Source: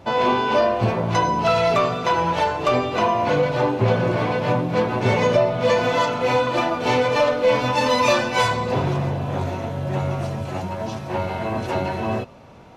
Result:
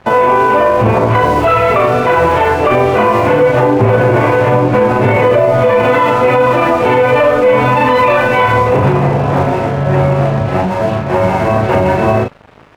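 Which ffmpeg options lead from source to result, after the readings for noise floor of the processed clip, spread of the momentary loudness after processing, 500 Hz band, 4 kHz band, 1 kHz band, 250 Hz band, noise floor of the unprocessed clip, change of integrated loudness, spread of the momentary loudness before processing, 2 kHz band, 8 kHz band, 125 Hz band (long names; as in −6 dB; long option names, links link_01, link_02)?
−18 dBFS, 4 LU, +10.5 dB, +1.0 dB, +10.0 dB, +10.0 dB, −32 dBFS, +10.0 dB, 9 LU, +10.0 dB, can't be measured, +10.5 dB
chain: -filter_complex "[0:a]lowpass=frequency=2500:width=0.5412,lowpass=frequency=2500:width=1.3066,aeval=exprs='sgn(val(0))*max(abs(val(0))-0.00708,0)':channel_layout=same,asplit=2[link_01][link_02];[link_02]adelay=38,volume=-2dB[link_03];[link_01][link_03]amix=inputs=2:normalize=0,alimiter=level_in=14.5dB:limit=-1dB:release=50:level=0:latency=1,volume=-1dB"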